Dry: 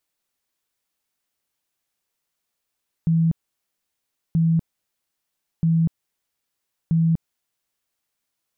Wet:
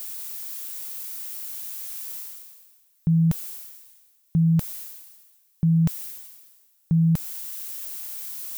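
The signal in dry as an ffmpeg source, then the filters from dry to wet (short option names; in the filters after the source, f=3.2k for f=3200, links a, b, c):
-f lavfi -i "aevalsrc='0.178*sin(2*PI*164*mod(t,1.28))*lt(mod(t,1.28),40/164)':d=5.12:s=44100"
-af "areverse,acompressor=mode=upward:threshold=-27dB:ratio=2.5,areverse,aemphasis=mode=production:type=75kf"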